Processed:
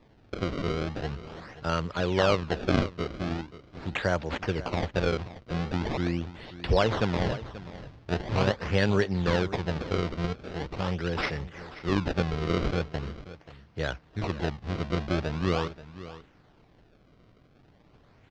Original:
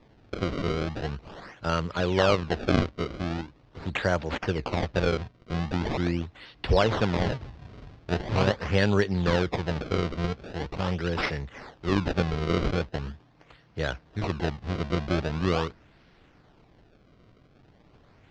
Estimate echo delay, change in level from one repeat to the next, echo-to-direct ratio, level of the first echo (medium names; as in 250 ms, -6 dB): 533 ms, no regular repeats, -15.5 dB, -15.5 dB